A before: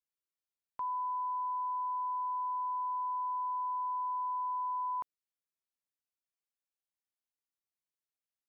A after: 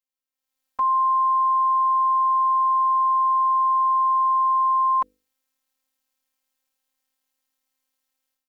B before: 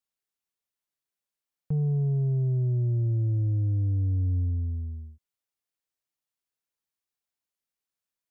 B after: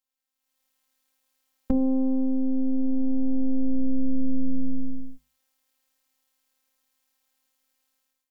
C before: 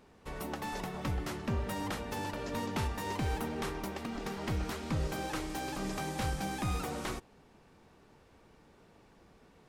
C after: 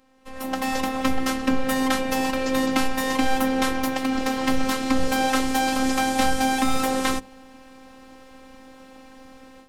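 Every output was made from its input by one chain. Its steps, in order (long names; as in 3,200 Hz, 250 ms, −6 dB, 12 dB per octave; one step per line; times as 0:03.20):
downward compressor, threshold −28 dBFS
phases set to zero 262 Hz
automatic gain control gain up to 15 dB
mains-hum notches 50/100/150/200/250/300/350/400/450/500 Hz
level +2.5 dB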